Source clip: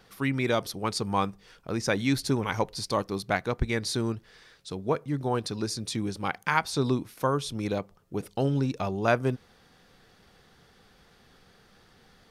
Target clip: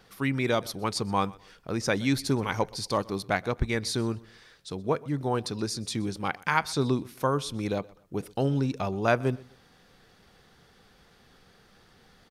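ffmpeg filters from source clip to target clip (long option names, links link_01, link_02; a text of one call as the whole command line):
ffmpeg -i in.wav -af "aecho=1:1:125|250:0.0708|0.0205" out.wav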